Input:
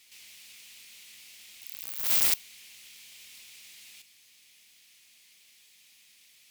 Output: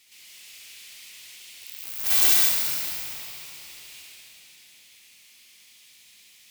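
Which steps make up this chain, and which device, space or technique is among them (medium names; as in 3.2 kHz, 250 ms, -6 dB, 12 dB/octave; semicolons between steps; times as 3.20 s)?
tunnel (flutter echo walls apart 11.6 m, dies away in 0.78 s; reverberation RT60 3.7 s, pre-delay 78 ms, DRR -3 dB); 2.06–2.49 s: comb 2.6 ms, depth 97%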